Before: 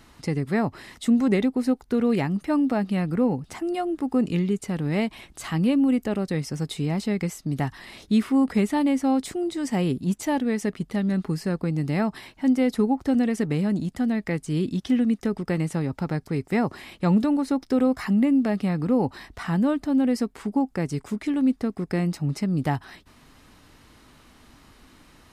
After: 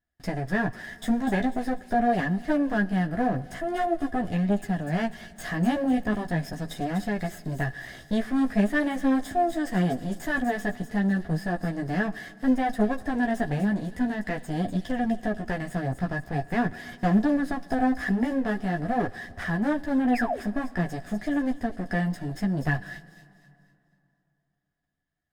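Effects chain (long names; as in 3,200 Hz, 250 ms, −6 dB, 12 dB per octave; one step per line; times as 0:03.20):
lower of the sound and its delayed copy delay 0.6 ms
noise gate −46 dBFS, range −35 dB
low-shelf EQ 140 Hz +7 dB
in parallel at −0.5 dB: downward compressor, threshold −30 dBFS, peak gain reduction 15 dB
on the sum: sound drawn into the spectrogram fall, 0:20.13–0:20.40, 340–2,900 Hz −30 dBFS
hollow resonant body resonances 700/1,700 Hz, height 17 dB, ringing for 30 ms
multi-voice chorus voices 2, 0.44 Hz, delay 13 ms, depth 3.4 ms
delay with a high-pass on its return 247 ms, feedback 38%, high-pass 4,500 Hz, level −6 dB
dense smooth reverb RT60 2.9 s, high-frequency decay 0.75×, DRR 18.5 dB
level −5.5 dB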